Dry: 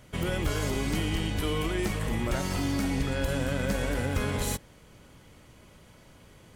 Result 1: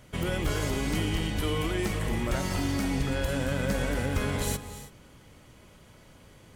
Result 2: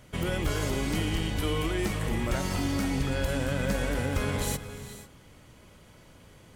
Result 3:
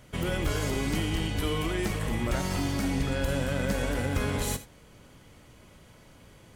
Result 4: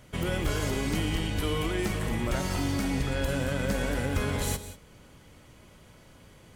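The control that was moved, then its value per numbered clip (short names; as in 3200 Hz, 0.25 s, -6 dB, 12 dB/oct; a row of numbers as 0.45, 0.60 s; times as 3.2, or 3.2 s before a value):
non-linear reverb, gate: 0.35, 0.52, 0.1, 0.21 s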